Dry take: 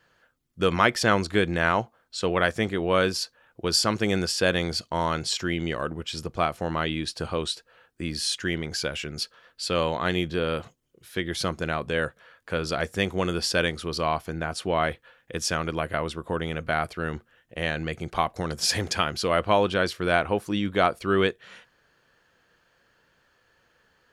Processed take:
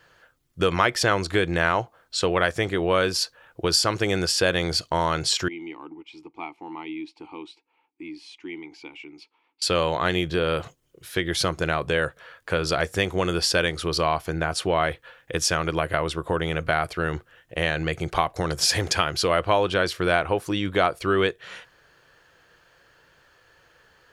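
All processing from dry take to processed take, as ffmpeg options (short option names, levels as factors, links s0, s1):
-filter_complex "[0:a]asettb=1/sr,asplit=3[s0][s1][s2];[s0]atrim=end=5.484[s3];[s1]atrim=start=5.48:end=9.62,asetpts=PTS-STARTPTS,afade=t=in:d=0.004:c=qsin,afade=t=out:st=4.136:d=0.004:c=qsin,asplit=3[s4][s5][s6];[s4]bandpass=f=300:t=q:w=8,volume=1[s7];[s5]bandpass=f=870:t=q:w=8,volume=0.501[s8];[s6]bandpass=f=2240:t=q:w=8,volume=0.355[s9];[s7][s8][s9]amix=inputs=3:normalize=0,equalizer=f=97:w=0.61:g=-11[s10];[s2]atrim=start=9.616[s11];[s3][s10]acrossfade=d=0.004:c1=hsin:c2=qsin[s12];[s12][s11]acrossfade=d=0.004:c1=qsin:c2=hsin,acompressor=threshold=0.0398:ratio=2,equalizer=f=220:t=o:w=0.33:g=-12,volume=2.24"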